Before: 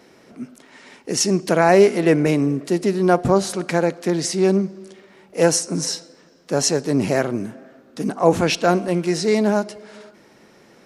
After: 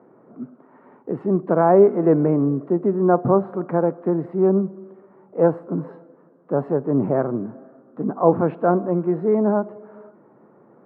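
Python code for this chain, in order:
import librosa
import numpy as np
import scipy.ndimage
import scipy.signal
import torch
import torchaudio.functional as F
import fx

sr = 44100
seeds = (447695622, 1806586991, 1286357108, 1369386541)

y = scipy.signal.sosfilt(scipy.signal.ellip(3, 1.0, 60, [120.0, 1200.0], 'bandpass', fs=sr, output='sos'), x)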